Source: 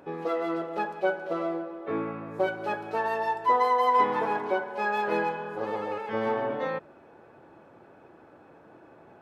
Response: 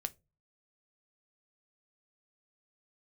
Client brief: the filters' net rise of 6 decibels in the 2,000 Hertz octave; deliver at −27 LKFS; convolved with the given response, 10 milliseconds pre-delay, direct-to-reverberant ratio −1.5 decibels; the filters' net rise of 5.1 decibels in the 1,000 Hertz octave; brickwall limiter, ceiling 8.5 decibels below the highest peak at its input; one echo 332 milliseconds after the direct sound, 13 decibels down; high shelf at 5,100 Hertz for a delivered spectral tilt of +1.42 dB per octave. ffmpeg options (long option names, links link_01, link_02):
-filter_complex "[0:a]equalizer=frequency=1000:width_type=o:gain=4.5,equalizer=frequency=2000:width_type=o:gain=7,highshelf=frequency=5100:gain=-7,alimiter=limit=-16dB:level=0:latency=1,aecho=1:1:332:0.224,asplit=2[link_01][link_02];[1:a]atrim=start_sample=2205,adelay=10[link_03];[link_02][link_03]afir=irnorm=-1:irlink=0,volume=2.5dB[link_04];[link_01][link_04]amix=inputs=2:normalize=0,volume=-4dB"